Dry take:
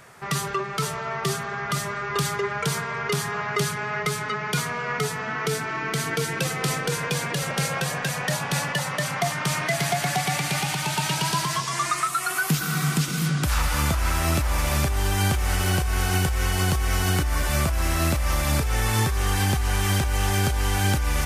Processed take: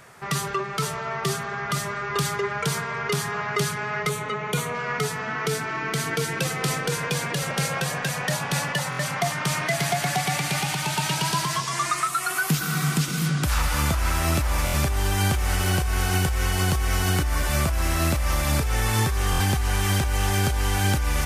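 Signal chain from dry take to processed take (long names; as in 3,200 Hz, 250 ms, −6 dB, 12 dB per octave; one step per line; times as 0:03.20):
0:04.09–0:04.75: thirty-one-band graphic EQ 500 Hz +8 dB, 1,600 Hz −7 dB, 5,000 Hz −12 dB
buffer that repeats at 0:08.90/0:14.65/0:19.31, samples 1,024, times 3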